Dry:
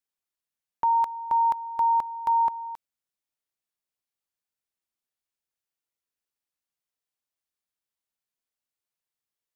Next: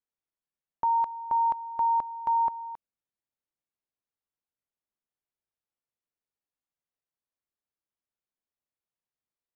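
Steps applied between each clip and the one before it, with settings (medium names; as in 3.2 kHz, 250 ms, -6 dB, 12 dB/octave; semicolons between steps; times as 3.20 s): low-pass 1 kHz 6 dB/octave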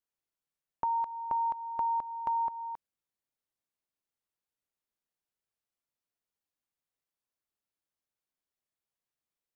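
compression 2.5:1, threshold -31 dBFS, peak gain reduction 6 dB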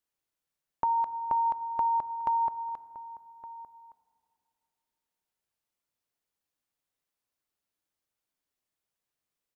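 echo from a far wall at 200 m, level -16 dB; FDN reverb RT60 2.7 s, low-frequency decay 1.3×, high-frequency decay 0.3×, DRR 15.5 dB; trim +3.5 dB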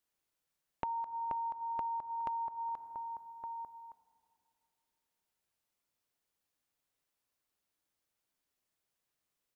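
compression 10:1, threshold -37 dBFS, peak gain reduction 13 dB; trim +1.5 dB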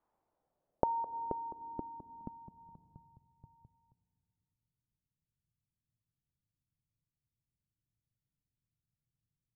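low-pass sweep 950 Hz -> 130 Hz, 0.05–3.17 s; trim +8.5 dB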